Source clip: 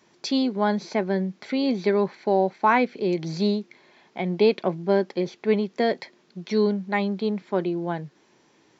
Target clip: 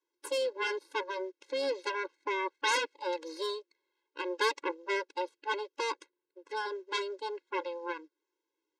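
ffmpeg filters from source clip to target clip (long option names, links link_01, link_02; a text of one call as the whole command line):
ffmpeg -i in.wav -filter_complex "[0:a]aeval=exprs='0.473*(cos(1*acos(clip(val(0)/0.473,-1,1)))-cos(1*PI/2))+0.106*(cos(3*acos(clip(val(0)/0.473,-1,1)))-cos(3*PI/2))+0.0299*(cos(7*acos(clip(val(0)/0.473,-1,1)))-cos(7*PI/2))+0.15*(cos(8*acos(clip(val(0)/0.473,-1,1)))-cos(8*PI/2))':channel_layout=same,asplit=3[link_01][link_02][link_03];[link_01]afade=type=out:start_time=6.02:duration=0.02[link_04];[link_02]aemphasis=mode=reproduction:type=75kf,afade=type=in:start_time=6.02:duration=0.02,afade=type=out:start_time=6.56:duration=0.02[link_05];[link_03]afade=type=in:start_time=6.56:duration=0.02[link_06];[link_04][link_05][link_06]amix=inputs=3:normalize=0,afftfilt=real='re*eq(mod(floor(b*sr/1024/280),2),1)':imag='im*eq(mod(floor(b*sr/1024/280),2),1)':win_size=1024:overlap=0.75,volume=-6.5dB" out.wav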